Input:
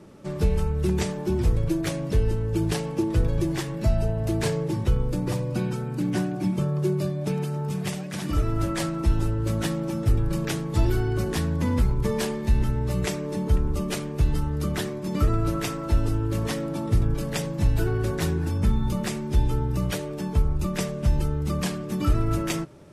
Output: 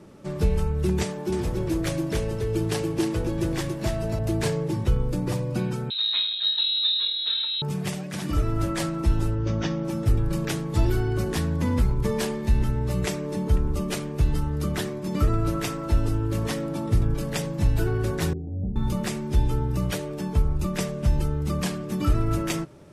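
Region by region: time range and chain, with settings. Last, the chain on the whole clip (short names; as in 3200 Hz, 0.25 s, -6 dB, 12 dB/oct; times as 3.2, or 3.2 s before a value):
1.04–4.19 low shelf 110 Hz -10.5 dB + echo 0.282 s -3.5 dB
5.9–7.62 inverted band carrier 4000 Hz + low shelf 270 Hz -11.5 dB
9.35–9.85 Chebyshev low-pass 6200 Hz, order 5 + notch 4100 Hz, Q 8.2
18.33–18.76 rippled Chebyshev low-pass 770 Hz, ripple 3 dB + resonator 95 Hz, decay 0.17 s, mix 80%
whole clip: dry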